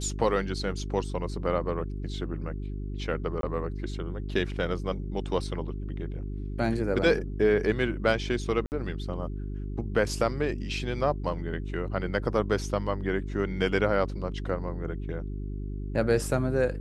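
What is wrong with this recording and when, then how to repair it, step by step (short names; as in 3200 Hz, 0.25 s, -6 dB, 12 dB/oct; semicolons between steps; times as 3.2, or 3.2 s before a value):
hum 50 Hz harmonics 8 -34 dBFS
3.41–3.43 gap 22 ms
8.66–8.72 gap 59 ms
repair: de-hum 50 Hz, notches 8; interpolate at 3.41, 22 ms; interpolate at 8.66, 59 ms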